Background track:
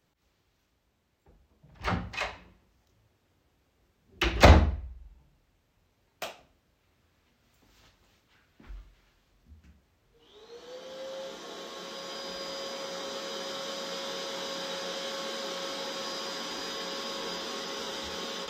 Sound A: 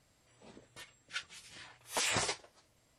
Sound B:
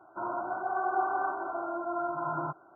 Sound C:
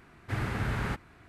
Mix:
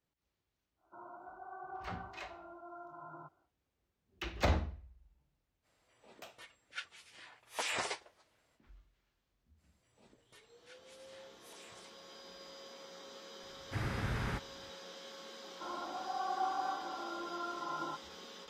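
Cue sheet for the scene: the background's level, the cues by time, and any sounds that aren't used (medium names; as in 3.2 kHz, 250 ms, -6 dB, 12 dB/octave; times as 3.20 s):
background track -14.5 dB
0.76 s: add B -17.5 dB, fades 0.10 s
5.62 s: add A -1.5 dB, fades 0.05 s + tone controls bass -12 dB, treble -7 dB
9.56 s: add A -9 dB, fades 0.05 s + compression, threshold -46 dBFS
13.43 s: add C -5.5 dB
15.44 s: add B -9.5 dB + comb 3.7 ms, depth 87%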